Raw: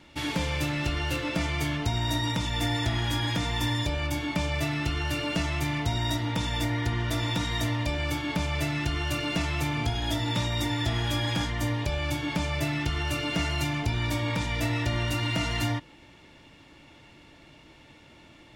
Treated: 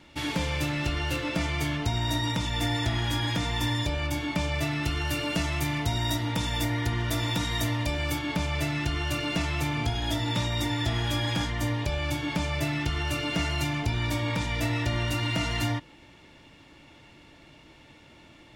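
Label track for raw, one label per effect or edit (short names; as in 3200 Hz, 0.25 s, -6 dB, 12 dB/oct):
4.830000	8.190000	high shelf 10000 Hz +9 dB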